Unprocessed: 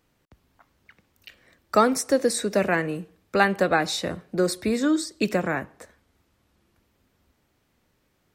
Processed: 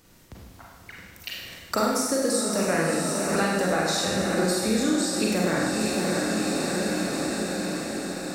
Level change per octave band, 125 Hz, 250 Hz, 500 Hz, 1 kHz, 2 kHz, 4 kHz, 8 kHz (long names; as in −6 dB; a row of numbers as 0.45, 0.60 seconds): +3.5, +2.0, −0.5, −2.0, −0.5, +4.5, +6.0 decibels